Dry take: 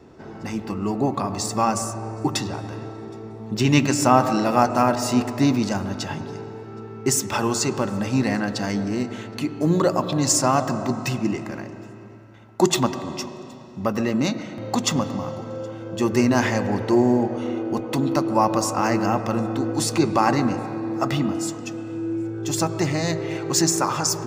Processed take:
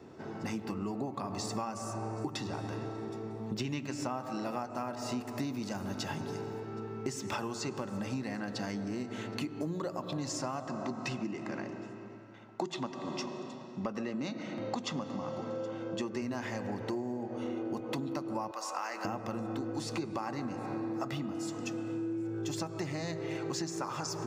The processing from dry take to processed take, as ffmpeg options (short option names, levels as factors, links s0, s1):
-filter_complex "[0:a]asettb=1/sr,asplit=3[s0][s1][s2];[s0]atrim=end=5.204[s3];[s1]atrim=start=5.2:end=6.6,asetpts=PTS-STARTPTS,afade=t=in:d=0.004:c=qsin,afade=t=out:st=1.396:d=0.004:c=qsin,equalizer=f=13000:t=o:w=1.1:g=10.5[s4];[s2]atrim=start=6.596[s5];[s3][s4]acrossfade=d=0.004:c1=hsin:c2=qsin[s6];[s6][s5]acrossfade=d=0.004:c1=qsin:c2=hsin,asettb=1/sr,asplit=3[s7][s8][s9];[s7]atrim=end=10.674[s10];[s8]atrim=start=10.67:end=16.22,asetpts=PTS-STARTPTS,afade=t=in:d=0.004:c=qsin,afade=t=out:st=5.546:d=0.004:c=qsin,highpass=140,lowpass=6500[s11];[s9]atrim=start=16.216[s12];[s10][s11]acrossfade=d=0.004:c1=hsin:c2=qsin[s13];[s13][s12]acrossfade=d=0.004:c1=qsin:c2=hsin,asettb=1/sr,asplit=3[s14][s15][s16];[s14]atrim=end=18.514[s17];[s15]atrim=start=18.51:end=19.05,asetpts=PTS-STARTPTS,afade=t=in:d=0.004:c=qsin,afade=t=out:st=0.536:d=0.004:c=qsin,highpass=810[s18];[s16]atrim=start=19.046[s19];[s17][s18]acrossfade=d=0.004:c1=hsin:c2=qsin[s20];[s20][s19]acrossfade=d=0.004:c1=qsin:c2=hsin,acrossover=split=5700[s21][s22];[s22]acompressor=threshold=0.0112:ratio=4:attack=1:release=60[s23];[s21][s23]amix=inputs=2:normalize=0,highpass=91,acompressor=threshold=0.0355:ratio=12,volume=0.668"